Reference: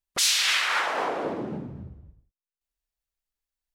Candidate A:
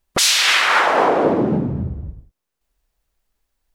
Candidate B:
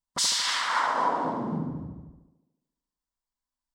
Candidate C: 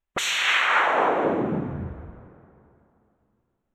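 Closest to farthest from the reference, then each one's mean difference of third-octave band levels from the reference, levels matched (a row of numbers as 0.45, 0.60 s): A, B, C; 3.0, 4.0, 6.0 dB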